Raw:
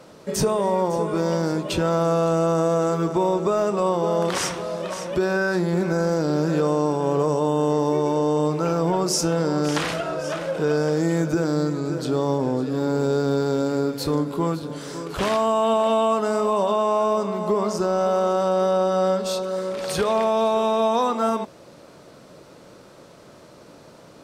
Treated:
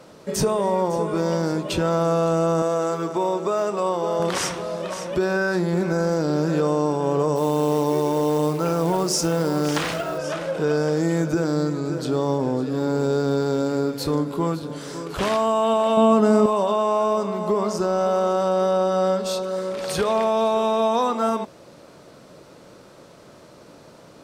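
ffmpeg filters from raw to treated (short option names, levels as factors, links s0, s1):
-filter_complex "[0:a]asettb=1/sr,asplit=3[s0][s1][s2];[s0]atrim=end=2.624[s3];[s1]atrim=start=2.62:end=4.2,asetpts=PTS-STARTPTS,afade=t=in:d=0.004:c=qsin,afade=t=out:st=1.576:d=0.004:c=qsin,highpass=f=340:p=1[s4];[s2]atrim=start=4.196[s5];[s3][s4]acrossfade=d=0.004:c1=hsin:c2=qsin[s6];[s6][s5]acrossfade=d=0.004:c1=qsin:c2=hsin,asplit=3[s7][s8][s9];[s7]afade=t=out:st=7.35:d=0.02[s10];[s8]acrusher=bits=5:mode=log:mix=0:aa=0.000001,afade=t=in:st=7.35:d=0.02,afade=t=out:st=10.17:d=0.02[s11];[s9]afade=t=in:st=10.17:d=0.02[s12];[s10][s11][s12]amix=inputs=3:normalize=0,asettb=1/sr,asplit=3[s13][s14][s15];[s13]atrim=end=15.974[s16];[s14]atrim=start=15.97:end=16.46,asetpts=PTS-STARTPTS,afade=t=in:d=0.004:c=qsin,afade=t=out:st=0.486:d=0.004:c=qsin,equalizer=f=190:t=o:w=2.3:g=11.5[s17];[s15]atrim=start=16.456[s18];[s16][s17]acrossfade=d=0.004:c1=hsin:c2=qsin[s19];[s19][s18]acrossfade=d=0.004:c1=qsin:c2=hsin"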